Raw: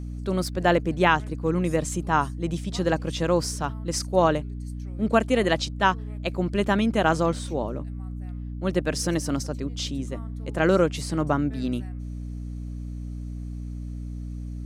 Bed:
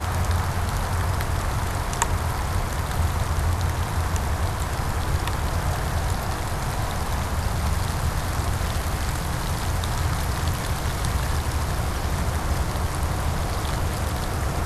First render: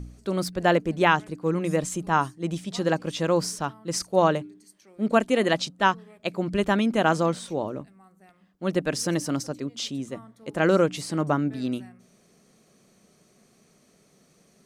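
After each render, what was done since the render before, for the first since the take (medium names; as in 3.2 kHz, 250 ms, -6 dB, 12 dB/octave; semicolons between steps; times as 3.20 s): de-hum 60 Hz, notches 5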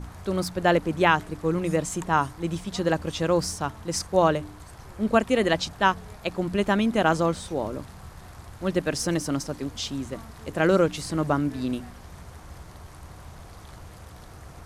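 add bed -19 dB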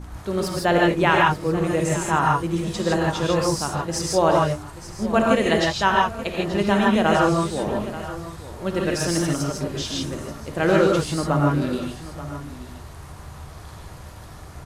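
delay 882 ms -14.5 dB; gated-style reverb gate 180 ms rising, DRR -2 dB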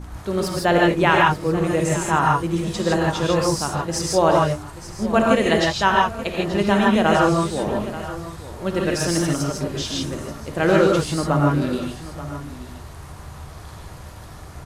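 trim +1.5 dB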